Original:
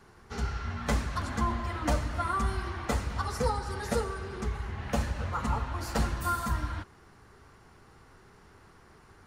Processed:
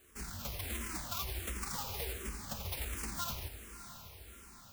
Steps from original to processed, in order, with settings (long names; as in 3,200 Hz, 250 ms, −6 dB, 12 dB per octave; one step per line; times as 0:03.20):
each half-wave held at its own peak
dynamic equaliser 2,300 Hz, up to +4 dB, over −45 dBFS, Q 2.2
phase-vocoder stretch with locked phases 0.51×
convolution reverb RT60 0.35 s, pre-delay 72 ms, DRR 12.5 dB
brickwall limiter −19.5 dBFS, peak gain reduction 7 dB
first-order pre-emphasis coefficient 0.8
feedback delay with all-pass diffusion 649 ms, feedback 57%, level −11.5 dB
frequency shifter mixed with the dry sound −1.4 Hz
level +3 dB